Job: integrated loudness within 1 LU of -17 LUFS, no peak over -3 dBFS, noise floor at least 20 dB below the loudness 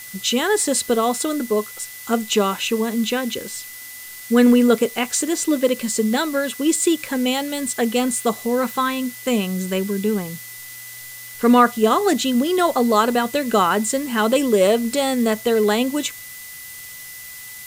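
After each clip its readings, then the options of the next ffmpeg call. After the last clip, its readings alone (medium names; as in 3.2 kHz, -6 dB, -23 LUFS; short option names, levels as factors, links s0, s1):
steady tone 2 kHz; tone level -40 dBFS; noise floor -37 dBFS; noise floor target -40 dBFS; loudness -19.5 LUFS; peak level -3.0 dBFS; loudness target -17.0 LUFS
-> -af "bandreject=f=2000:w=30"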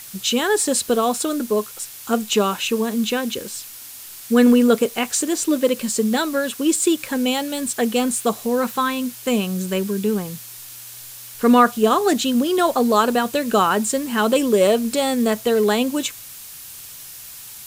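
steady tone not found; noise floor -38 dBFS; noise floor target -40 dBFS
-> -af "afftdn=nr=6:nf=-38"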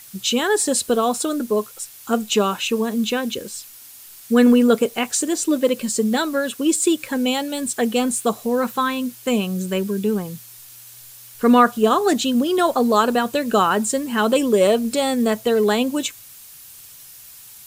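noise floor -43 dBFS; loudness -19.5 LUFS; peak level -3.0 dBFS; loudness target -17.0 LUFS
-> -af "volume=1.33,alimiter=limit=0.708:level=0:latency=1"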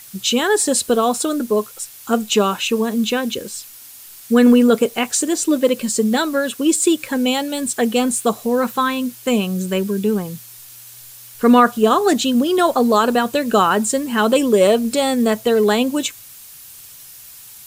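loudness -17.0 LUFS; peak level -3.0 dBFS; noise floor -40 dBFS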